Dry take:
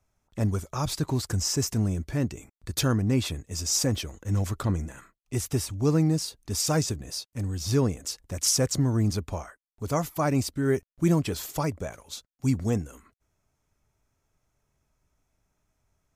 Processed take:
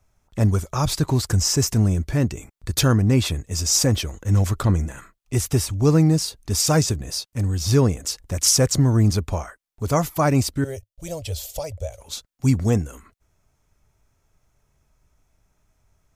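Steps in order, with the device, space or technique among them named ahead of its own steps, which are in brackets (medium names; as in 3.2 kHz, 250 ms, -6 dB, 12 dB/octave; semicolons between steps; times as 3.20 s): low shelf boost with a cut just above (bass shelf 72 Hz +5.5 dB; peaking EQ 270 Hz -2 dB); 10.64–12.01 s: FFT filter 100 Hz 0 dB, 150 Hz -21 dB, 360 Hz -21 dB, 550 Hz +1 dB, 1.1 kHz -20 dB, 1.7 kHz -18 dB, 3.1 kHz -4 dB; trim +6.5 dB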